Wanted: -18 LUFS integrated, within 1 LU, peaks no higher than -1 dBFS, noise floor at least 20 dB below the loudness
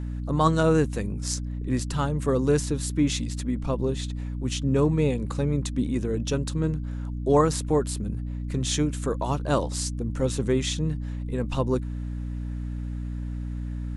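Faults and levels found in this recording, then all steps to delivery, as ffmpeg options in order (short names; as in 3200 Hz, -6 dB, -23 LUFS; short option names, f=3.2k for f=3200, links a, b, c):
hum 60 Hz; harmonics up to 300 Hz; hum level -29 dBFS; loudness -26.5 LUFS; peak -7.0 dBFS; loudness target -18.0 LUFS
-> -af "bandreject=f=60:t=h:w=6,bandreject=f=120:t=h:w=6,bandreject=f=180:t=h:w=6,bandreject=f=240:t=h:w=6,bandreject=f=300:t=h:w=6"
-af "volume=8.5dB,alimiter=limit=-1dB:level=0:latency=1"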